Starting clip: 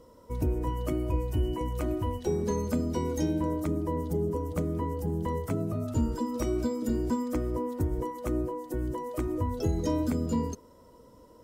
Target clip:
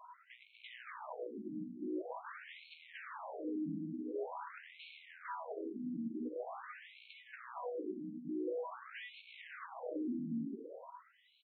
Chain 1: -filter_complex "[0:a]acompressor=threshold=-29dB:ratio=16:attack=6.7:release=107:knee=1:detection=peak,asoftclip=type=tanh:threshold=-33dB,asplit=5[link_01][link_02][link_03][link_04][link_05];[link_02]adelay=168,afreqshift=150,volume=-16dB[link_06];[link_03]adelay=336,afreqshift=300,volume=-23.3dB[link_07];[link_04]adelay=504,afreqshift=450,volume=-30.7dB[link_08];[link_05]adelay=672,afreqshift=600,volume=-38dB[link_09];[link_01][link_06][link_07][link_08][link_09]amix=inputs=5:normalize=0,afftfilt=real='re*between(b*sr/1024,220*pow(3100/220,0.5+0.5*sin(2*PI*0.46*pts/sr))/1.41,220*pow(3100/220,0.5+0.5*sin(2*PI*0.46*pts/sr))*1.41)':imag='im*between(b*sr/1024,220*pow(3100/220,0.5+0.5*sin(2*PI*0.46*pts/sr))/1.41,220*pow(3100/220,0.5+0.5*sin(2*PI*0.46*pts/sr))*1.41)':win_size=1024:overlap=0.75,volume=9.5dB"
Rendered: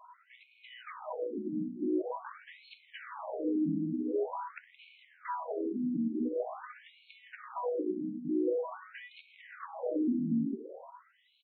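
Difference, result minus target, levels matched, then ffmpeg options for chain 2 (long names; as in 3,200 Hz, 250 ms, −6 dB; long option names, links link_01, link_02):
soft clipping: distortion −7 dB
-filter_complex "[0:a]acompressor=threshold=-29dB:ratio=16:attack=6.7:release=107:knee=1:detection=peak,asoftclip=type=tanh:threshold=-44dB,asplit=5[link_01][link_02][link_03][link_04][link_05];[link_02]adelay=168,afreqshift=150,volume=-16dB[link_06];[link_03]adelay=336,afreqshift=300,volume=-23.3dB[link_07];[link_04]adelay=504,afreqshift=450,volume=-30.7dB[link_08];[link_05]adelay=672,afreqshift=600,volume=-38dB[link_09];[link_01][link_06][link_07][link_08][link_09]amix=inputs=5:normalize=0,afftfilt=real='re*between(b*sr/1024,220*pow(3100/220,0.5+0.5*sin(2*PI*0.46*pts/sr))/1.41,220*pow(3100/220,0.5+0.5*sin(2*PI*0.46*pts/sr))*1.41)':imag='im*between(b*sr/1024,220*pow(3100/220,0.5+0.5*sin(2*PI*0.46*pts/sr))/1.41,220*pow(3100/220,0.5+0.5*sin(2*PI*0.46*pts/sr))*1.41)':win_size=1024:overlap=0.75,volume=9.5dB"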